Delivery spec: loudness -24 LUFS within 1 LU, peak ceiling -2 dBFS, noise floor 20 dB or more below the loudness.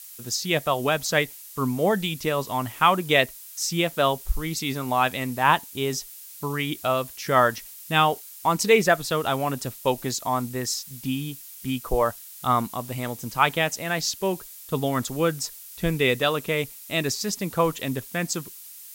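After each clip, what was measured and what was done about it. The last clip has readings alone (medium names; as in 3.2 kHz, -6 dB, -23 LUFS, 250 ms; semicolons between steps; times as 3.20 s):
noise floor -43 dBFS; noise floor target -45 dBFS; loudness -25.0 LUFS; peak level -4.0 dBFS; loudness target -24.0 LUFS
-> noise reduction 6 dB, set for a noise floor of -43 dBFS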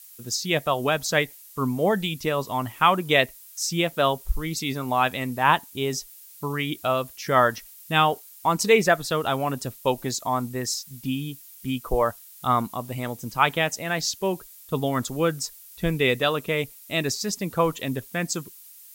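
noise floor -48 dBFS; loudness -25.0 LUFS; peak level -4.0 dBFS; loudness target -24.0 LUFS
-> trim +1 dB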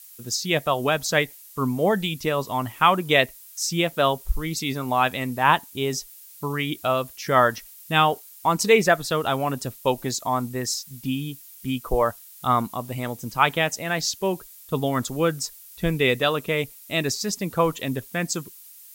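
loudness -24.0 LUFS; peak level -3.0 dBFS; noise floor -47 dBFS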